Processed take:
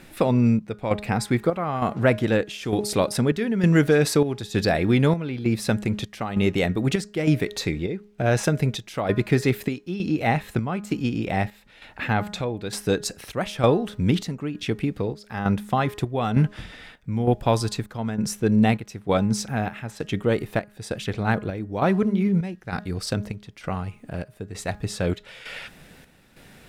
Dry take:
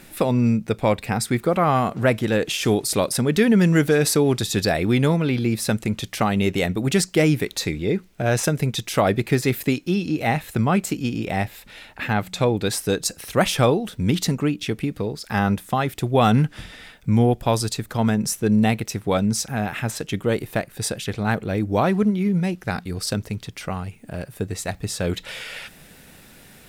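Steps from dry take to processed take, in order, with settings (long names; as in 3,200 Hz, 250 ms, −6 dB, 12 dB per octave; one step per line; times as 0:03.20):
low-pass filter 4,000 Hz 6 dB per octave
hum removal 207.5 Hz, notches 9
square-wave tremolo 1.1 Hz, depth 60%, duty 65%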